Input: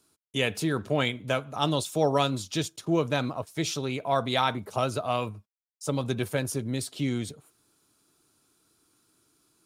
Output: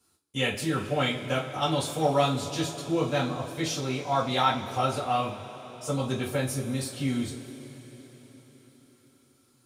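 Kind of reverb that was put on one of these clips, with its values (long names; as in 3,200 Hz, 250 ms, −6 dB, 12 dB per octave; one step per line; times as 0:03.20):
coupled-rooms reverb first 0.26 s, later 5 s, from −22 dB, DRR −7 dB
level −7 dB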